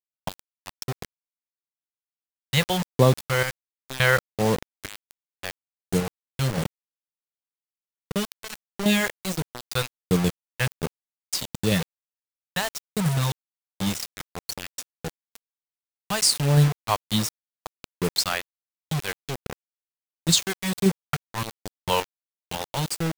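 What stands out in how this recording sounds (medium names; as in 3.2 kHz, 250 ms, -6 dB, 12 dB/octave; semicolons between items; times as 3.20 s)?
phasing stages 2, 1.4 Hz, lowest notch 210–2200 Hz; random-step tremolo, depth 85%; a quantiser's noise floor 6-bit, dither none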